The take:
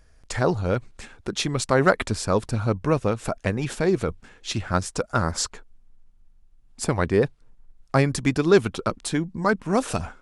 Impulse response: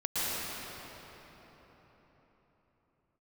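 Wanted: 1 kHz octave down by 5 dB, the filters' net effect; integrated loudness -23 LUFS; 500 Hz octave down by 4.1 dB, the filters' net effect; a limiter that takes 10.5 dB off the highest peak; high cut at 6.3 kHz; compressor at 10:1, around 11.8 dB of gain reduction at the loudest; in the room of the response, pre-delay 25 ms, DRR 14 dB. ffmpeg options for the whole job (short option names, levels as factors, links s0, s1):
-filter_complex "[0:a]lowpass=6300,equalizer=f=500:t=o:g=-4,equalizer=f=1000:t=o:g=-6,acompressor=threshold=0.0447:ratio=10,alimiter=level_in=1.12:limit=0.0631:level=0:latency=1,volume=0.891,asplit=2[s0][s1];[1:a]atrim=start_sample=2205,adelay=25[s2];[s1][s2]afir=irnorm=-1:irlink=0,volume=0.0631[s3];[s0][s3]amix=inputs=2:normalize=0,volume=5.01"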